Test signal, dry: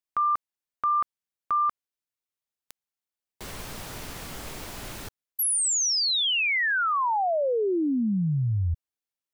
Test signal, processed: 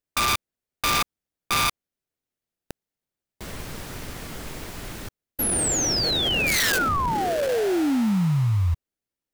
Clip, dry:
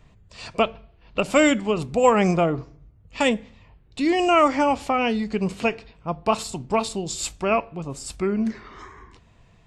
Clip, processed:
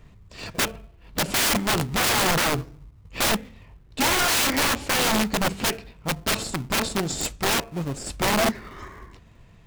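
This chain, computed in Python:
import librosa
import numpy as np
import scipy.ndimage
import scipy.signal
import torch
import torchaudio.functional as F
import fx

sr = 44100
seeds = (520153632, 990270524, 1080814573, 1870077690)

p1 = fx.peak_eq(x, sr, hz=1900.0, db=2.5, octaves=0.55)
p2 = fx.sample_hold(p1, sr, seeds[0], rate_hz=1100.0, jitter_pct=20)
p3 = p1 + (p2 * 10.0 ** (-4.5 / 20.0))
y = (np.mod(10.0 ** (16.5 / 20.0) * p3 + 1.0, 2.0) - 1.0) / 10.0 ** (16.5 / 20.0)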